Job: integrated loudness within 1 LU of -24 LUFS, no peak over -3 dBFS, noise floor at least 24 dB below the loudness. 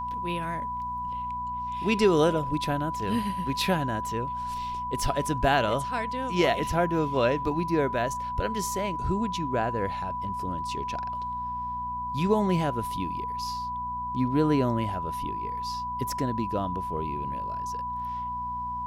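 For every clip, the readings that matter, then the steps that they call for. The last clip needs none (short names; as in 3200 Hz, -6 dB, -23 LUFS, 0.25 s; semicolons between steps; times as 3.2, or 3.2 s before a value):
hum 60 Hz; harmonics up to 240 Hz; hum level -40 dBFS; steady tone 990 Hz; tone level -30 dBFS; loudness -28.5 LUFS; peak -10.0 dBFS; loudness target -24.0 LUFS
-> de-hum 60 Hz, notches 4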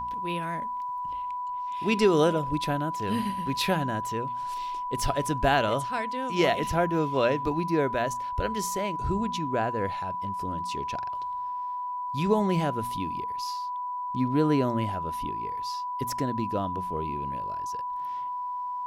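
hum none; steady tone 990 Hz; tone level -30 dBFS
-> notch 990 Hz, Q 30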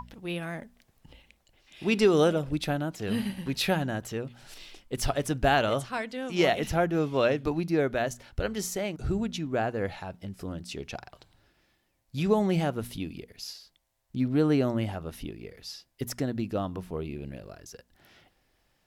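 steady tone none; loudness -29.0 LUFS; peak -11.0 dBFS; loudness target -24.0 LUFS
-> gain +5 dB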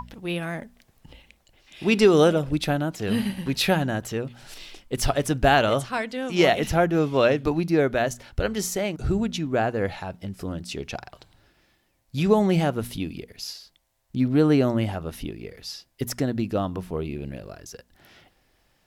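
loudness -24.0 LUFS; peak -6.0 dBFS; noise floor -67 dBFS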